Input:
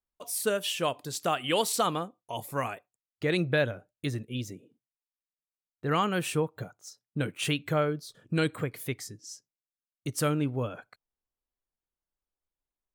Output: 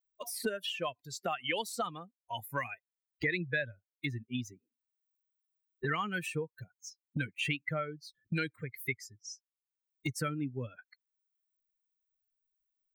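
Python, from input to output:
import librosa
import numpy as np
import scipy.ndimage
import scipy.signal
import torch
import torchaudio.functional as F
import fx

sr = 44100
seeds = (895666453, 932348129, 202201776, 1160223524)

y = fx.bin_expand(x, sr, power=2.0)
y = fx.peak_eq(y, sr, hz=2000.0, db=12.5, octaves=0.85)
y = fx.band_squash(y, sr, depth_pct=100)
y = F.gain(torch.from_numpy(y), -4.5).numpy()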